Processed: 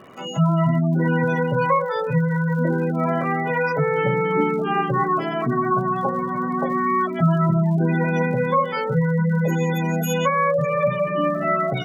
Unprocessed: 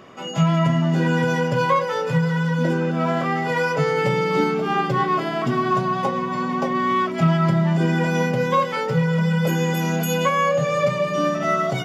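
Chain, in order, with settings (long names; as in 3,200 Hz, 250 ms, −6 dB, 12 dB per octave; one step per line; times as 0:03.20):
gate on every frequency bin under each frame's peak −20 dB strong
surface crackle 66 per second −39 dBFS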